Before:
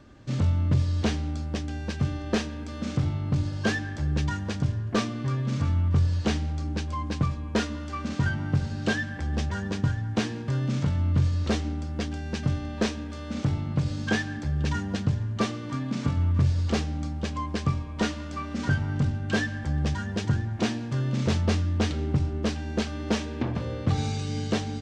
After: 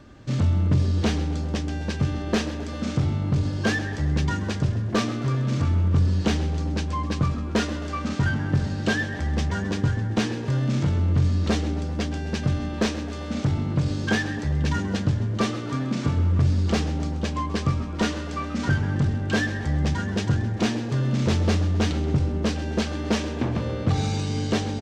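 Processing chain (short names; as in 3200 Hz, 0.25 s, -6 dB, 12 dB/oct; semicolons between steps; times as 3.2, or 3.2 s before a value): in parallel at -5 dB: hard clip -25 dBFS, distortion -9 dB; on the sum: frequency-shifting echo 0.131 s, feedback 53%, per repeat +100 Hz, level -14.5 dB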